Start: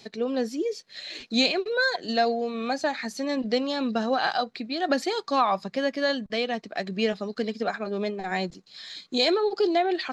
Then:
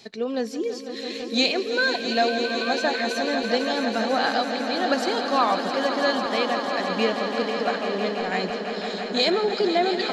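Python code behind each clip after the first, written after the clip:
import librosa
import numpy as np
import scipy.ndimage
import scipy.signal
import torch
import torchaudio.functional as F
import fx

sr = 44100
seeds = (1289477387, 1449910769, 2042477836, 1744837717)

y = fx.low_shelf(x, sr, hz=320.0, db=-3.0)
y = fx.echo_swell(y, sr, ms=166, loudest=5, wet_db=-10.5)
y = F.gain(torch.from_numpy(y), 1.5).numpy()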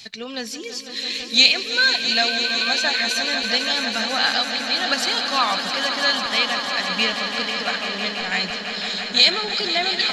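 y = fx.curve_eq(x, sr, hz=(100.0, 380.0, 2700.0), db=(0, -17, 3))
y = F.gain(torch.from_numpy(y), 7.0).numpy()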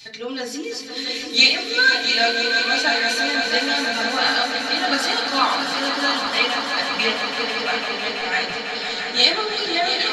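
y = x + 10.0 ** (-10.0 / 20.0) * np.pad(x, (int(690 * sr / 1000.0), 0))[:len(x)]
y = fx.rev_fdn(y, sr, rt60_s=0.42, lf_ratio=0.75, hf_ratio=0.45, size_ms=20.0, drr_db=-5.0)
y = F.gain(torch.from_numpy(y), -4.5).numpy()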